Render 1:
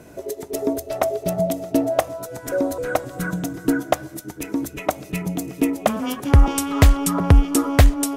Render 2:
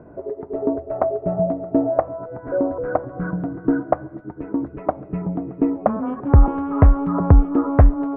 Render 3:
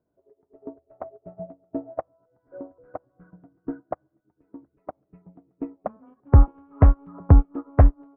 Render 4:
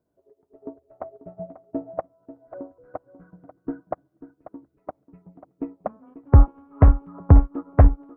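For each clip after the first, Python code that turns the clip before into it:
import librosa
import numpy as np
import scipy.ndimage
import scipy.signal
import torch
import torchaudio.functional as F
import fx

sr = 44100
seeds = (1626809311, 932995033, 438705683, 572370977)

y1 = scipy.signal.sosfilt(scipy.signal.butter(4, 1300.0, 'lowpass', fs=sr, output='sos'), x)
y1 = F.gain(torch.from_numpy(y1), 1.0).numpy()
y2 = fx.upward_expand(y1, sr, threshold_db=-29.0, expansion=2.5)
y3 = y2 + 10.0 ** (-14.0 / 20.0) * np.pad(y2, (int(540 * sr / 1000.0), 0))[:len(y2)]
y3 = F.gain(torch.from_numpy(y3), 1.0).numpy()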